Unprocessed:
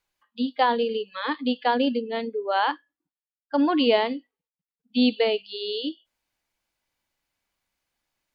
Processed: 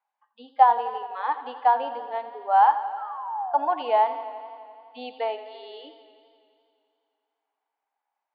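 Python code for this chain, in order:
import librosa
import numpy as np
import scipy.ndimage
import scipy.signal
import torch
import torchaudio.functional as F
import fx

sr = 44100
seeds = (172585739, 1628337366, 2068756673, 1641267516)

y = fx.spec_paint(x, sr, seeds[0], shape='fall', start_s=2.97, length_s=0.72, low_hz=570.0, high_hz=1400.0, level_db=-38.0)
y = fx.ladder_bandpass(y, sr, hz=890.0, resonance_pct=70)
y = fx.echo_warbled(y, sr, ms=85, feedback_pct=78, rate_hz=2.8, cents=58, wet_db=-14.0)
y = y * librosa.db_to_amplitude(9.0)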